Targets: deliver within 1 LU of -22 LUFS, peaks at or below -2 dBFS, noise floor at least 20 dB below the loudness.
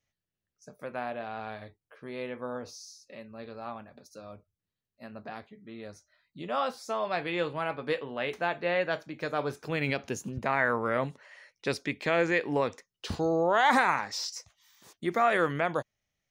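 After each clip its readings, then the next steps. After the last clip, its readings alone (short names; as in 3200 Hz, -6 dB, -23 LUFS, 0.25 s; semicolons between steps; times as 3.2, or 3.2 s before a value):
loudness -30.0 LUFS; peak -11.0 dBFS; loudness target -22.0 LUFS
-> gain +8 dB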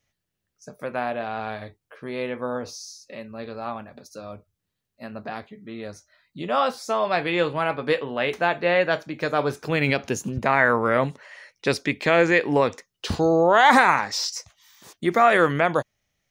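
loudness -22.0 LUFS; peak -3.0 dBFS; noise floor -81 dBFS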